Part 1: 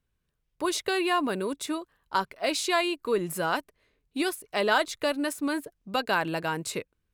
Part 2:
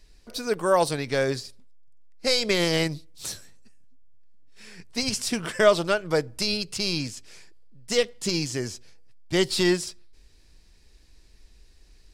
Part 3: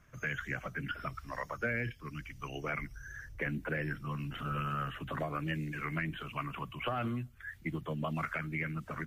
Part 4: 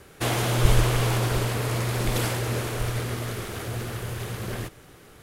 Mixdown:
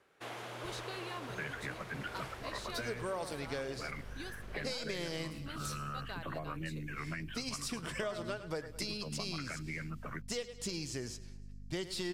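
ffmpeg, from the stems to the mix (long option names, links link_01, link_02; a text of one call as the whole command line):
ffmpeg -i stem1.wav -i stem2.wav -i stem3.wav -i stem4.wav -filter_complex "[0:a]equalizer=frequency=4100:width_type=o:width=0.77:gain=7,volume=-20dB[link_01];[1:a]aeval=exprs='val(0)+0.00794*(sin(2*PI*50*n/s)+sin(2*PI*2*50*n/s)/2+sin(2*PI*3*50*n/s)/3+sin(2*PI*4*50*n/s)/4+sin(2*PI*5*50*n/s)/5)':channel_layout=same,adelay=2400,volume=-6.5dB,asplit=2[link_02][link_03];[link_03]volume=-22.5dB[link_04];[2:a]adelay=1150,volume=-3dB[link_05];[3:a]highpass=frequency=720:poles=1,aemphasis=mode=reproduction:type=75kf,volume=-13dB[link_06];[link_01][link_02][link_05]amix=inputs=3:normalize=0,acompressor=threshold=-36dB:ratio=6,volume=0dB[link_07];[link_04]aecho=0:1:106|212|318|424|530|636|742|848:1|0.55|0.303|0.166|0.0915|0.0503|0.0277|0.0152[link_08];[link_06][link_07][link_08]amix=inputs=3:normalize=0" out.wav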